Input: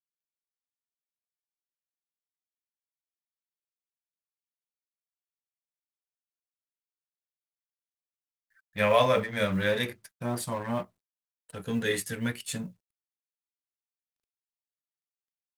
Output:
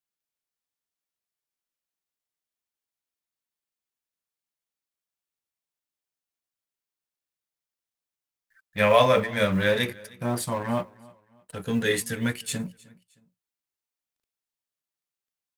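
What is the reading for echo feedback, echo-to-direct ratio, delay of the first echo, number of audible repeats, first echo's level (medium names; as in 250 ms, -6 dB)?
35%, -23.0 dB, 310 ms, 2, -23.5 dB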